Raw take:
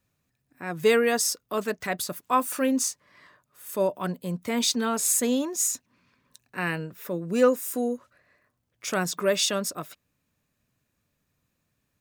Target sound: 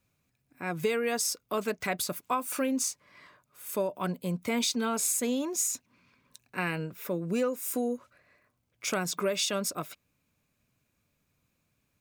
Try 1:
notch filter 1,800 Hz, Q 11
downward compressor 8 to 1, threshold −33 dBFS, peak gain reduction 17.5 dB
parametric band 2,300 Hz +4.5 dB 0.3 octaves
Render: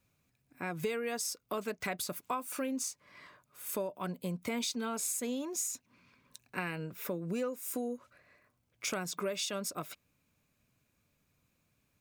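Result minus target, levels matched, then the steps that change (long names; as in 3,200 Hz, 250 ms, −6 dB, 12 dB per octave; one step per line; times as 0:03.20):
downward compressor: peak gain reduction +6.5 dB
change: downward compressor 8 to 1, threshold −25.5 dBFS, peak gain reduction 11 dB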